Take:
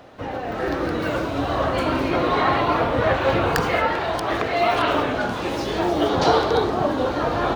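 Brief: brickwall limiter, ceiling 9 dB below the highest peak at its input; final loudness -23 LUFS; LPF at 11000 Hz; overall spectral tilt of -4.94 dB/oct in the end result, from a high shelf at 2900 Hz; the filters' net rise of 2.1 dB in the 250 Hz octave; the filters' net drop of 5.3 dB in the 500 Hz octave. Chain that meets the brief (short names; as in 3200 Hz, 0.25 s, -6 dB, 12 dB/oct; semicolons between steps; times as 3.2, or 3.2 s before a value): LPF 11000 Hz; bell 250 Hz +6 dB; bell 500 Hz -8.5 dB; high shelf 2900 Hz -8 dB; gain +3 dB; limiter -13.5 dBFS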